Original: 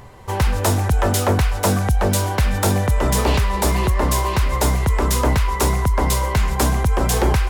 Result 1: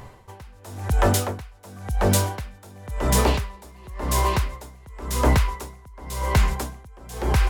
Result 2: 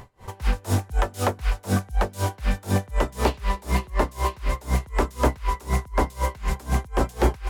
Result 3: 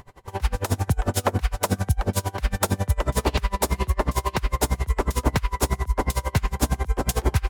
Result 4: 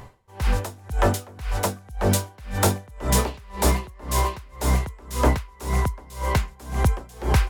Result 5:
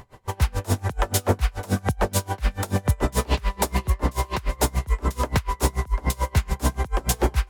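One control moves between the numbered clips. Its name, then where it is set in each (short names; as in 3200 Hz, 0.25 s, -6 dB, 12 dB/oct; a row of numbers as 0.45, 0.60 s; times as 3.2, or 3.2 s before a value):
dB-linear tremolo, rate: 0.94, 4, 11, 1.9, 6.9 Hz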